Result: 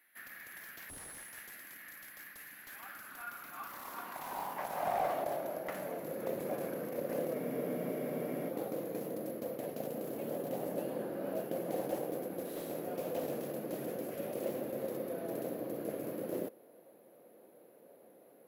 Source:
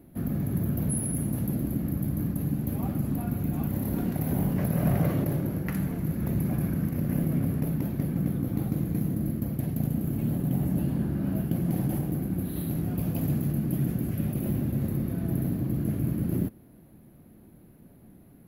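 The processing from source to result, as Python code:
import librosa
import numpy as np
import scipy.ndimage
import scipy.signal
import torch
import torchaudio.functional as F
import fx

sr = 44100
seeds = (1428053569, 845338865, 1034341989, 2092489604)

y = fx.filter_sweep_highpass(x, sr, from_hz=1800.0, to_hz=510.0, start_s=2.53, end_s=6.18, q=4.7)
y = fx.spec_freeze(y, sr, seeds[0], at_s=7.35, hold_s=1.13)
y = fx.slew_limit(y, sr, full_power_hz=49.0)
y = y * librosa.db_to_amplitude(-3.5)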